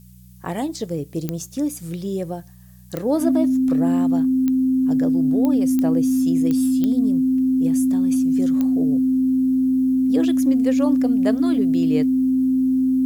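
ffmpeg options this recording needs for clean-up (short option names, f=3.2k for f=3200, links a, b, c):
-af "adeclick=t=4,bandreject=f=61.3:t=h:w=4,bandreject=f=122.6:t=h:w=4,bandreject=f=183.9:t=h:w=4,bandreject=f=260:w=30,agate=range=-21dB:threshold=-27dB"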